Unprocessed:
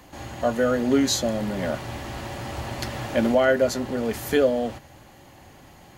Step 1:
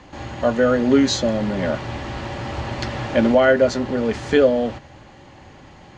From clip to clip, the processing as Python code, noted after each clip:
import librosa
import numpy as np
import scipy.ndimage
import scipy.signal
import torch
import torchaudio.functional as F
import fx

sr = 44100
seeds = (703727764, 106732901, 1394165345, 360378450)

y = scipy.signal.sosfilt(scipy.signal.bessel(8, 4600.0, 'lowpass', norm='mag', fs=sr, output='sos'), x)
y = fx.notch(y, sr, hz=700.0, q=15.0)
y = y * librosa.db_to_amplitude(5.0)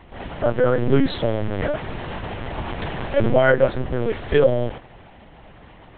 y = fx.lpc_vocoder(x, sr, seeds[0], excitation='pitch_kept', order=8)
y = y * librosa.db_to_amplitude(-1.0)